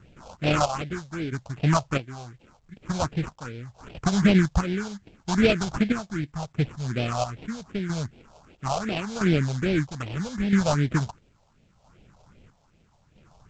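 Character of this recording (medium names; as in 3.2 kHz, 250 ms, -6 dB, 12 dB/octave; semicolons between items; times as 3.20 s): chopped level 0.76 Hz, depth 60%, duty 50%; aliases and images of a low sample rate 1.9 kHz, jitter 20%; phasing stages 4, 2.6 Hz, lowest notch 300–1200 Hz; A-law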